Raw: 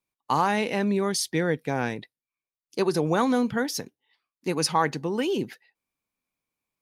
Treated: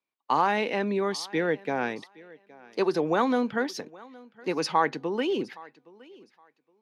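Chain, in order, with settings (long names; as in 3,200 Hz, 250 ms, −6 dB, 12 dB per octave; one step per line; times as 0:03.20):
three-way crossover with the lows and the highs turned down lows −17 dB, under 210 Hz, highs −17 dB, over 4,800 Hz
feedback echo with a high-pass in the loop 817 ms, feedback 21%, high-pass 170 Hz, level −22 dB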